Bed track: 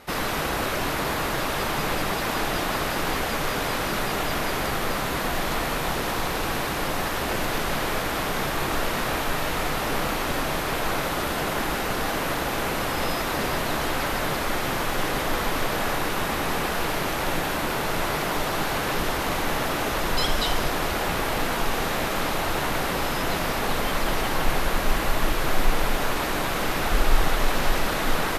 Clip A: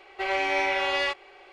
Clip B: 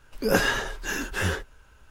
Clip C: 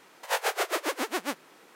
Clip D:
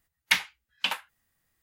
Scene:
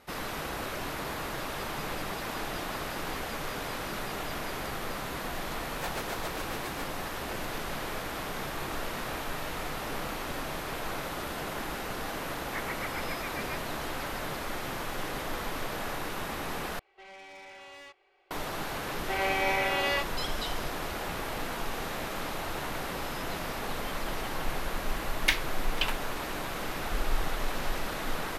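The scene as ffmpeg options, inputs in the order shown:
-filter_complex "[3:a]asplit=2[s0][s1];[1:a]asplit=2[s2][s3];[0:a]volume=0.335[s4];[s1]lowpass=f=2300:t=q:w=0.5098,lowpass=f=2300:t=q:w=0.6013,lowpass=f=2300:t=q:w=0.9,lowpass=f=2300:t=q:w=2.563,afreqshift=-2700[s5];[s2]asoftclip=type=tanh:threshold=0.0398[s6];[4:a]aecho=1:1:492:0.0794[s7];[s4]asplit=2[s8][s9];[s8]atrim=end=16.794[s10];[s6]atrim=end=1.52,asetpts=PTS-STARTPTS,volume=0.141[s11];[s9]atrim=start=18.306[s12];[s0]atrim=end=1.75,asetpts=PTS-STARTPTS,volume=0.282,afade=t=in:d=0.004:c=hsin,afade=t=out:st=1.746:d=0.004:c=hsin,adelay=5510[s13];[s5]atrim=end=1.75,asetpts=PTS-STARTPTS,volume=0.316,afade=t=in:d=0.004:c=hsin,afade=t=out:st=1.746:d=0.004:c=hsin,adelay=12230[s14];[s3]atrim=end=1.52,asetpts=PTS-STARTPTS,volume=0.708,afade=t=in:d=0.004:c=hsin,afade=t=out:st=1.516:d=0.004:c=hsin,adelay=18900[s15];[s7]atrim=end=1.62,asetpts=PTS-STARTPTS,volume=0.708,afade=t=in:d=0.004:c=hsin,afade=t=out:st=1.616:d=0.004:c=hsin,adelay=24970[s16];[s10][s11]acrossfade=d=0.004:c1=hsin:c2=hsin[s17];[s17][s12]acrossfade=d=0.004:c1=hsin:c2=hsin[s18];[s18][s13][s14][s15][s16]amix=inputs=5:normalize=0"

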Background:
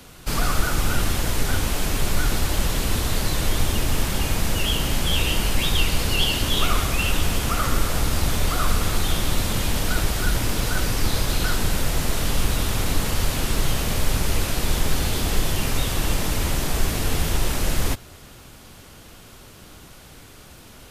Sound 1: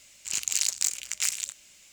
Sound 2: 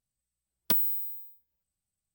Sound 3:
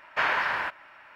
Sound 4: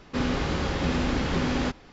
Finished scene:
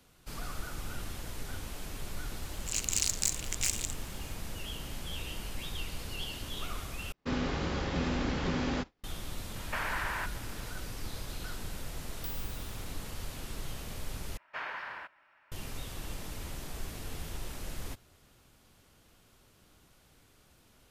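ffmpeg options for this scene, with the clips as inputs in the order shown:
-filter_complex "[3:a]asplit=2[s0][s1];[0:a]volume=0.126[s2];[4:a]agate=range=0.0224:threshold=0.0126:ratio=3:release=100:detection=peak[s3];[s0]acompressor=threshold=0.0316:ratio=6:attack=3.2:release=140:knee=1:detection=peak[s4];[s2]asplit=3[s5][s6][s7];[s5]atrim=end=7.124[s8];[s3]atrim=end=1.92,asetpts=PTS-STARTPTS,volume=0.501[s9];[s6]atrim=start=9.036:end=14.374[s10];[s1]atrim=end=1.15,asetpts=PTS-STARTPTS,volume=0.2[s11];[s7]atrim=start=15.516[s12];[1:a]atrim=end=1.92,asetpts=PTS-STARTPTS,volume=0.631,afade=t=in:d=0.004:c=hsin,afade=t=out:st=1.916:d=0.004:c=hsin,adelay=2410[s13];[s4]atrim=end=1.15,asetpts=PTS-STARTPTS,volume=0.841,afade=t=in:d=0.004:c=hsin,afade=t=out:st=1.146:d=0.004:c=hsin,adelay=9560[s14];[2:a]atrim=end=2.14,asetpts=PTS-STARTPTS,volume=0.141,afade=t=in:d=0.004:c=hsin,afade=t=out:st=2.136:d=0.004:c=hsin,adelay=508914S[s15];[s8][s9]acrossfade=d=0.004:c1=hsin:c2=hsin[s16];[s16][s10]acrossfade=d=0.004:c1=hsin:c2=hsin[s17];[s17][s11]acrossfade=d=0.004:c1=hsin:c2=hsin[s18];[s18][s12]acrossfade=d=0.004:c1=hsin:c2=hsin[s19];[s19][s13][s14][s15]amix=inputs=4:normalize=0"

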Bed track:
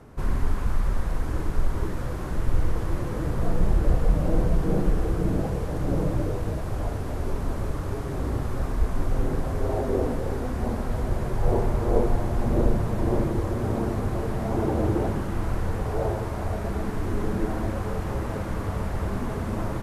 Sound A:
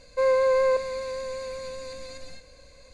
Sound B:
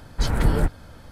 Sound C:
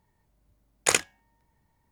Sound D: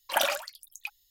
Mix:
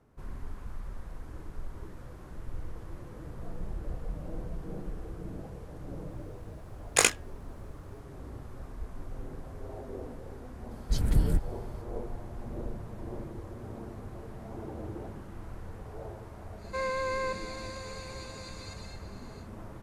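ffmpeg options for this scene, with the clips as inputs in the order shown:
-filter_complex "[0:a]volume=0.158[s0];[3:a]asplit=2[s1][s2];[s2]adelay=20,volume=0.501[s3];[s1][s3]amix=inputs=2:normalize=0[s4];[2:a]equalizer=f=1200:t=o:w=2.9:g=-13.5[s5];[1:a]highpass=980[s6];[s4]atrim=end=1.91,asetpts=PTS-STARTPTS,volume=0.891,afade=t=in:d=0.004:c=hsin,afade=t=out:st=1.906:d=0.004:c=hsin,adelay=269010S[s7];[s5]atrim=end=1.11,asetpts=PTS-STARTPTS,volume=0.631,afade=t=in:d=0.004:c=hsin,afade=t=out:st=1.106:d=0.004:c=hsin,adelay=10710[s8];[s6]atrim=end=2.93,asetpts=PTS-STARTPTS,volume=0.794,afade=t=in:d=0.1,afade=t=out:st=2.83:d=0.1,adelay=16560[s9];[s0][s7][s8][s9]amix=inputs=4:normalize=0"

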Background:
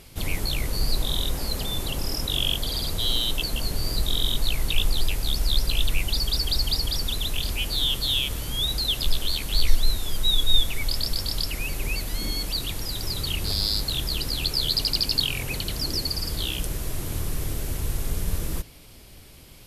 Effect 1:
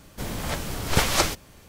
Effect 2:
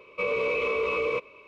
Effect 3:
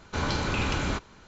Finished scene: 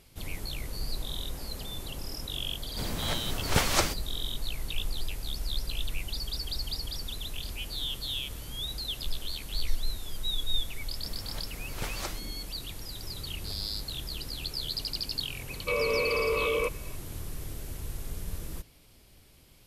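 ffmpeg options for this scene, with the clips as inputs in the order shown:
-filter_complex "[1:a]asplit=2[s0][s1];[0:a]volume=0.316[s2];[s0]atrim=end=1.68,asetpts=PTS-STARTPTS,volume=0.631,afade=t=in:d=0.004:c=hsin,afade=t=out:st=1.676:d=0.004:c=hsin,adelay=2590[s3];[s1]atrim=end=1.68,asetpts=PTS-STARTPTS,volume=0.168,afade=t=in:d=0.004:c=hsin,afade=t=out:st=1.676:d=0.004:c=hsin,adelay=10850[s4];[2:a]atrim=end=1.47,asetpts=PTS-STARTPTS,volume=0.891,afade=t=in:d=0.004:c=hsin,afade=t=out:st=1.466:d=0.004:c=hsin,adelay=15490[s5];[s2][s3][s4][s5]amix=inputs=4:normalize=0"

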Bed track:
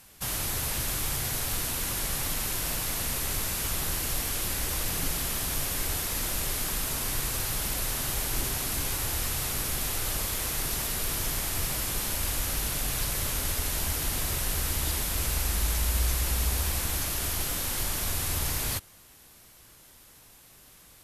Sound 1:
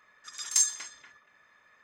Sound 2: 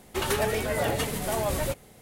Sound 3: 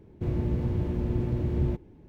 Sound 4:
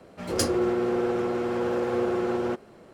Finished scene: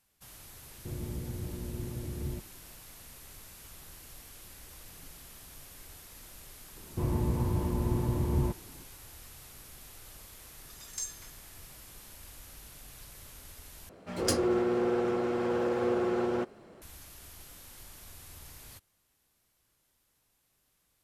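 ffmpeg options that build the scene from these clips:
-filter_complex "[3:a]asplit=2[s0][s1];[0:a]volume=0.1[s2];[s1]equalizer=f=990:t=o:w=0.48:g=13.5[s3];[s2]asplit=2[s4][s5];[s4]atrim=end=13.894[s6];[4:a]atrim=end=2.93,asetpts=PTS-STARTPTS,volume=0.708[s7];[s5]atrim=start=16.816[s8];[s0]atrim=end=2.08,asetpts=PTS-STARTPTS,volume=0.299,afade=t=in:d=0.004:c=hsin,afade=t=out:st=2.076:d=0.004:c=hsin,adelay=640[s9];[s3]atrim=end=2.08,asetpts=PTS-STARTPTS,volume=0.794,afade=t=in:d=0.004:c=hsin,afade=t=out:st=2.076:d=0.004:c=hsin,adelay=6760[s10];[1:a]atrim=end=1.83,asetpts=PTS-STARTPTS,volume=0.211,afade=t=in:d=0.004:c=hsin,afade=t=out:st=1.826:d=0.004:c=hsin,adelay=459522S[s11];[s6][s7]acrossfade=d=0.004:c1=hsin:c2=hsin[s12];[s12][s8]acrossfade=d=0.004:c1=hsin:c2=hsin[s13];[s13][s9][s10][s11]amix=inputs=4:normalize=0"

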